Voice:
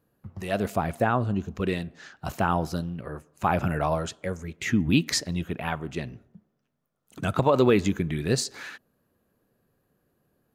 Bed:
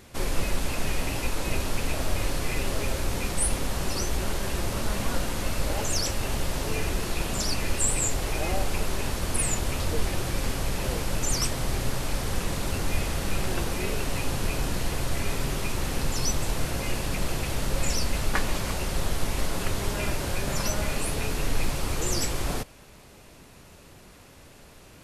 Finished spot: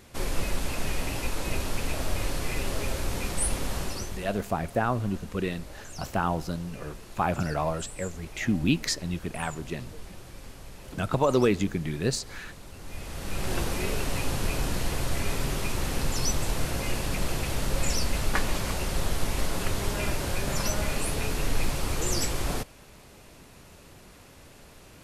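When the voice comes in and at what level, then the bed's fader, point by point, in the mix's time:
3.75 s, -2.5 dB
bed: 3.78 s -2 dB
4.48 s -16.5 dB
12.74 s -16.5 dB
13.54 s -0.5 dB

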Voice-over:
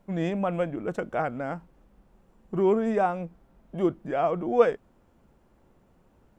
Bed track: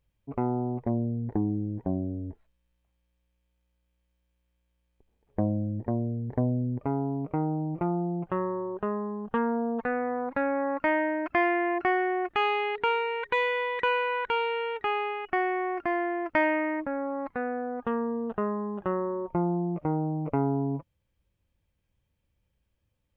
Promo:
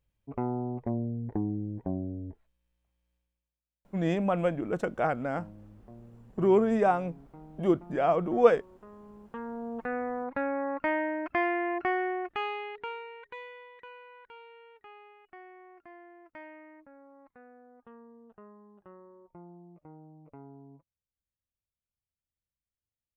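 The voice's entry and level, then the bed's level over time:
3.85 s, 0.0 dB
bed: 3.15 s -3.5 dB
3.63 s -21.5 dB
8.85 s -21.5 dB
9.95 s -3.5 dB
12.07 s -3.5 dB
13.88 s -23 dB

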